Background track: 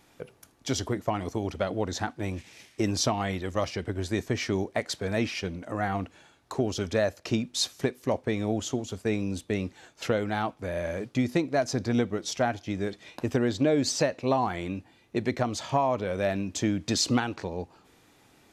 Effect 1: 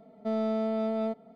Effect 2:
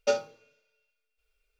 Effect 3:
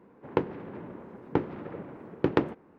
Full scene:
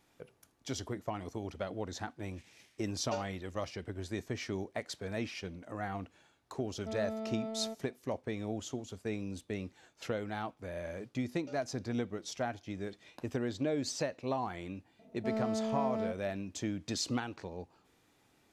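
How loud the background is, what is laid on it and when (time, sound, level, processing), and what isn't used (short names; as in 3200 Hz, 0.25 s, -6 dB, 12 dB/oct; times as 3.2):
background track -9.5 dB
3.04 add 2 -13 dB
6.61 add 1 -10 dB
11.4 add 2 -17.5 dB + limiter -24.5 dBFS
14.99 add 1 -4.5 dB + Wiener smoothing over 25 samples
not used: 3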